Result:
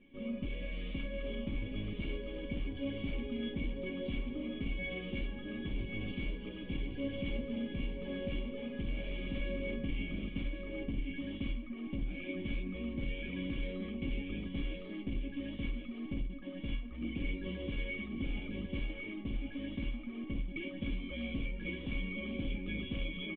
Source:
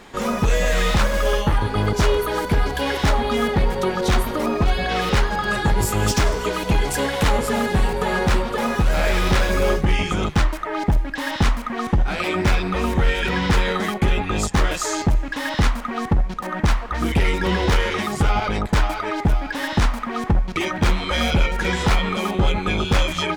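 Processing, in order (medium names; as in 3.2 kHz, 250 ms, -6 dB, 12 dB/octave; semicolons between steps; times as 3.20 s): in parallel at -4 dB: integer overflow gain 12.5 dB; on the sum: cascade formant filter i; feedback comb 560 Hz, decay 0.18 s, harmonics all, mix 90%; delay 1097 ms -5 dB; trim +4.5 dB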